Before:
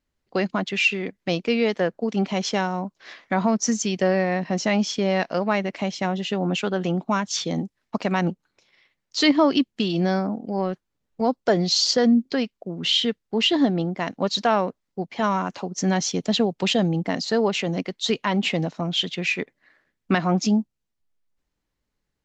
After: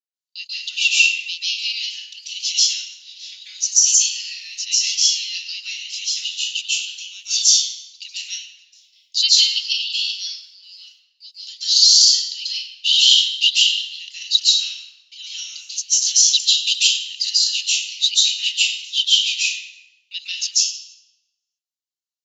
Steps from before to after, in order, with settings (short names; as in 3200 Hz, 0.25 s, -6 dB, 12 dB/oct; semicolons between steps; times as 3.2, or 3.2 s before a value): Chebyshev high-pass 2800 Hz, order 5; gate with hold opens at -54 dBFS; high shelf 6600 Hz +11 dB; reverb RT60 1.1 s, pre-delay 0.135 s, DRR -9 dB; maximiser +1.5 dB; gain -1 dB